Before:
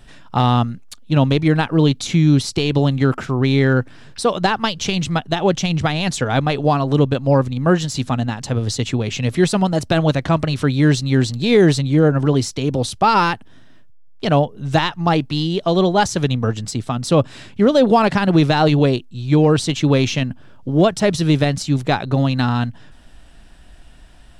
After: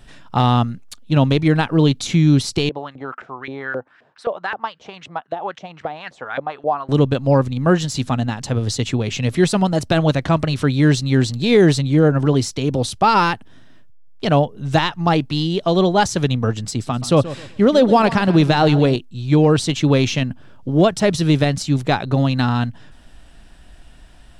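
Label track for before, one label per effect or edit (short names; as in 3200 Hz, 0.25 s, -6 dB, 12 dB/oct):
2.690000	6.890000	LFO band-pass saw up 3.8 Hz 510–2000 Hz
16.620000	18.960000	feedback echo 0.129 s, feedback 28%, level -15 dB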